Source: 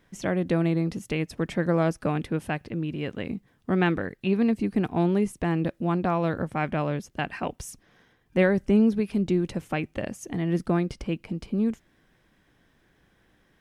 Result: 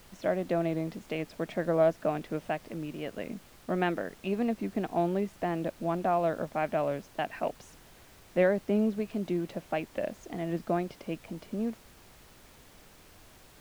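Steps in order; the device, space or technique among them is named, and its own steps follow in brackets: horn gramophone (band-pass 190–4500 Hz; peaking EQ 640 Hz +11 dB 0.39 oct; wow and flutter; pink noise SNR 23 dB); trim -6 dB

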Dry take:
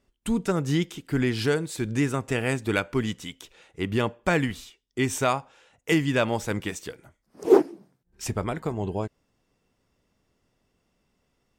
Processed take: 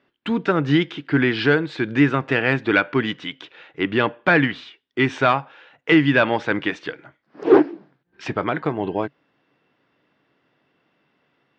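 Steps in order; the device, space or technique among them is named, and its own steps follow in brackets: overdrive pedal into a guitar cabinet (overdrive pedal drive 15 dB, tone 5.4 kHz, clips at -4.5 dBFS; cabinet simulation 110–3800 Hz, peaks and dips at 140 Hz +9 dB, 300 Hz +8 dB, 1.6 kHz +5 dB)

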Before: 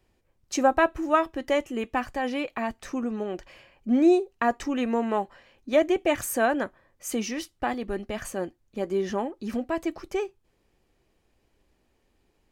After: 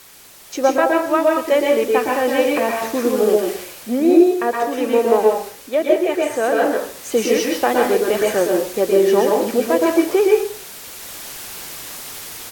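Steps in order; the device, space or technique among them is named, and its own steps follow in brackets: filmed off a television (band-pass 250–6900 Hz; peaking EQ 470 Hz +10 dB 0.5 oct; reverberation RT60 0.45 s, pre-delay 110 ms, DRR -1 dB; white noise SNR 21 dB; level rider gain up to 11.5 dB; trim -1 dB; AAC 64 kbps 48 kHz)

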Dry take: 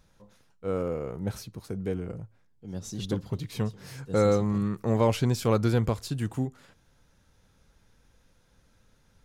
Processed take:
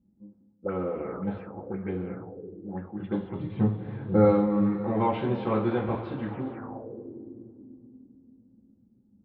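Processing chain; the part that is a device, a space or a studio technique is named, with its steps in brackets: 3.40–4.25 s: tilt EQ -3.5 dB/octave; two-slope reverb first 0.32 s, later 4.5 s, from -18 dB, DRR -4.5 dB; envelope filter bass rig (touch-sensitive low-pass 220–3800 Hz up, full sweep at -21 dBFS; cabinet simulation 77–2100 Hz, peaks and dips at 130 Hz -9 dB, 310 Hz +5 dB, 830 Hz +6 dB); trim -7 dB

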